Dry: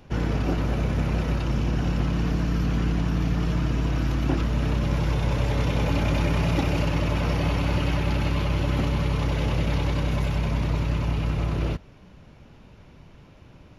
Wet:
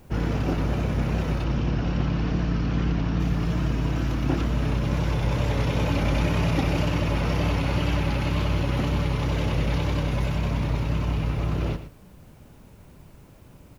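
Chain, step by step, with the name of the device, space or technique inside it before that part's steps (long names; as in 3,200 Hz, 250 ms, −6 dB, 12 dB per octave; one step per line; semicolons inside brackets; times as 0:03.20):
plain cassette with noise reduction switched in (one half of a high-frequency compander decoder only; tape wow and flutter; white noise bed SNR 41 dB)
0:01.44–0:03.20: low-pass filter 5,900 Hz 24 dB per octave
single-tap delay 114 ms −12 dB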